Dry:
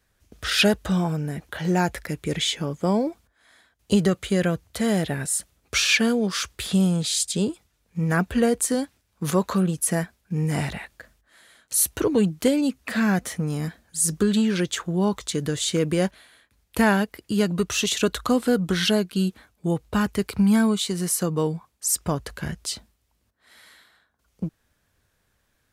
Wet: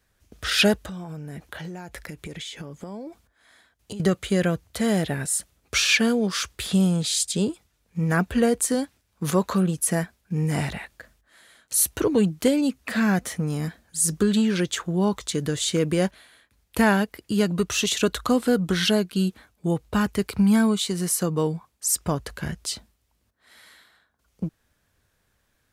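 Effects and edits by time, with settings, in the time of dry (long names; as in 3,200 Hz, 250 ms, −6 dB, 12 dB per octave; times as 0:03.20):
0:00.79–0:04.00: downward compressor 12 to 1, threshold −32 dBFS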